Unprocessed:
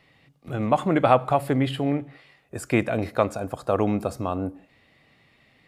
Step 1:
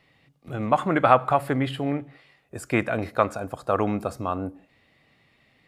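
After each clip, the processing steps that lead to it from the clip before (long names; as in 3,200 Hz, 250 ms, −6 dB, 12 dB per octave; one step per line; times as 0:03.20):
dynamic equaliser 1,400 Hz, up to +8 dB, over −37 dBFS, Q 1.1
level −2.5 dB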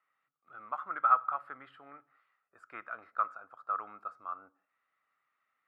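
resonant band-pass 1,300 Hz, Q 11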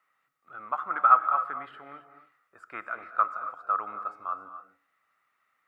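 reverb whose tail is shaped and stops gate 300 ms rising, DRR 10 dB
level +6.5 dB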